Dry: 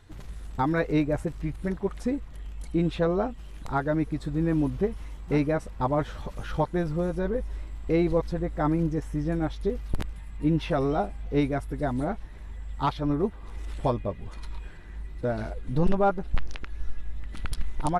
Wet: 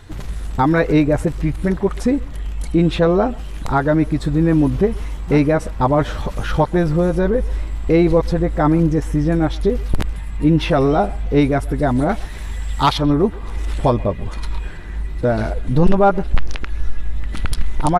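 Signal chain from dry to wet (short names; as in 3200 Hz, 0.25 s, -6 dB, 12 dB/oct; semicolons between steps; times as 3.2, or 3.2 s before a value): 12.09–12.98 high shelf 2200 Hz +11.5 dB; in parallel at -1 dB: limiter -25 dBFS, peak gain reduction 14 dB; on the sum: speakerphone echo 0.13 s, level -22 dB; gain +7.5 dB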